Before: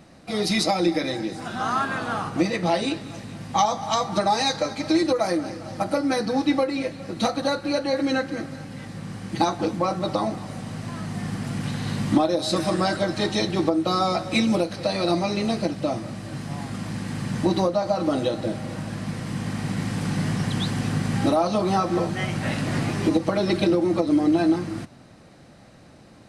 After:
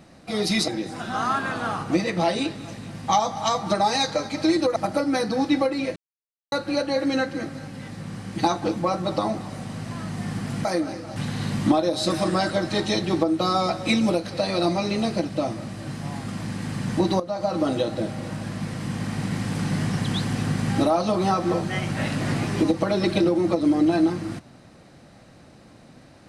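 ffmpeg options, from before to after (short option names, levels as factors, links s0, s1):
-filter_complex "[0:a]asplit=8[s0][s1][s2][s3][s4][s5][s6][s7];[s0]atrim=end=0.682[s8];[s1]atrim=start=1.138:end=5.222[s9];[s2]atrim=start=5.728:end=6.93,asetpts=PTS-STARTPTS,afade=t=out:st=1.198:d=0.004:c=hsin[s10];[s3]atrim=start=6.93:end=7.49,asetpts=PTS-STARTPTS,volume=0[s11];[s4]atrim=start=7.49:end=11.622,asetpts=PTS-STARTPTS,afade=t=in:d=0.004:c=hsin[s12];[s5]atrim=start=5.218:end=5.732[s13];[s6]atrim=start=11.618:end=17.66,asetpts=PTS-STARTPTS,afade=t=out:st=6.038:d=0.004:c=hsin:silence=0.223872[s14];[s7]atrim=start=17.66,asetpts=PTS-STARTPTS,afade=t=in:d=0.45:c=qsin:silence=0.223872[s15];[s8][s9]acrossfade=d=0.004:c1=hsin:c2=hsin[s16];[s10][s11][s12]concat=n=3:v=0:a=1[s17];[s16][s17]acrossfade=d=0.004:c1=hsin:c2=hsin[s18];[s18][s13]acrossfade=d=0.004:c1=hsin:c2=hsin[s19];[s14][s15]concat=n=2:v=0:a=1[s20];[s19][s20]acrossfade=d=0.004:c1=hsin:c2=hsin"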